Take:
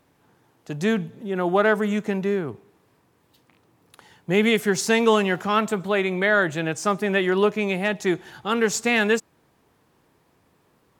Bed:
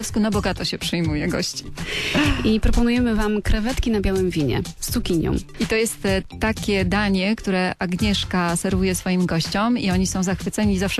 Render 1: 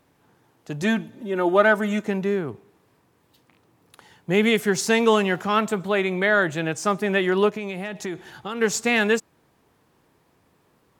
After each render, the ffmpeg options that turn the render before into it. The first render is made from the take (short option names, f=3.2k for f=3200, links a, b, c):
-filter_complex "[0:a]asettb=1/sr,asplit=3[a][b][c];[a]atrim=end=0.824[d];[b]atrim=start=0.82:end=2.05,asetpts=PTS-STARTPTS,afade=t=in:d=0.004:c=qsin,afade=t=out:st=1.226:d=0.004:c=qsin,aecho=1:1:3.3:0.67,atrim=end_sample=54243[e];[c]atrim=start=2.046[f];[d][e]acrossfade=d=0.004:c1=hsin:c2=qsin[g];[g][f]acrossfade=d=0.004:c1=qsin:c2=hsin,asplit=3[h][i][j];[h]afade=t=out:st=7.49:d=0.02[k];[i]acompressor=threshold=-25dB:ratio=10:attack=3.2:release=140:knee=1:detection=peak,afade=t=in:st=7.49:d=0.02,afade=t=out:st=8.6:d=0.02[l];[j]afade=t=in:st=8.6:d=0.02[m];[k][l][m]amix=inputs=3:normalize=0"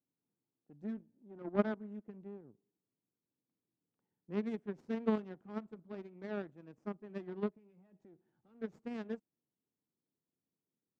-af "aeval=exprs='0.631*(cos(1*acos(clip(val(0)/0.631,-1,1)))-cos(1*PI/2))+0.2*(cos(3*acos(clip(val(0)/0.631,-1,1)))-cos(3*PI/2))+0.01*(cos(8*acos(clip(val(0)/0.631,-1,1)))-cos(8*PI/2))':c=same,bandpass=f=230:t=q:w=1.3:csg=0"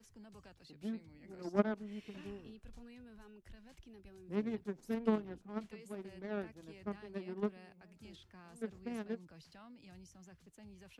-filter_complex "[1:a]volume=-36.5dB[a];[0:a][a]amix=inputs=2:normalize=0"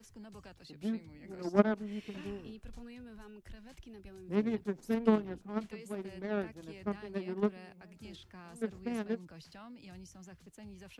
-af "volume=5.5dB"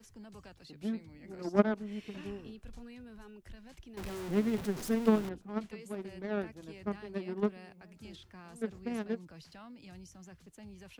-filter_complex "[0:a]asettb=1/sr,asplit=3[a][b][c];[a]atrim=end=3.974[d];[b]atrim=start=3.97:end=5.29,asetpts=PTS-STARTPTS,afade=t=in:d=0.004:c=qsin,afade=t=out:st=1.316:d=0.004:c=qsin,aeval=exprs='val(0)+0.5*0.015*sgn(val(0))':c=same[e];[c]atrim=start=5.286[f];[d][e]acrossfade=d=0.004:c1=hsin:c2=qsin[g];[g][f]acrossfade=d=0.004:c1=qsin:c2=hsin"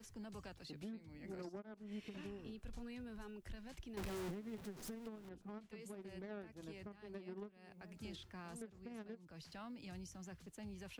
-af "acompressor=threshold=-41dB:ratio=4,alimiter=level_in=15dB:limit=-24dB:level=0:latency=1:release=491,volume=-15dB"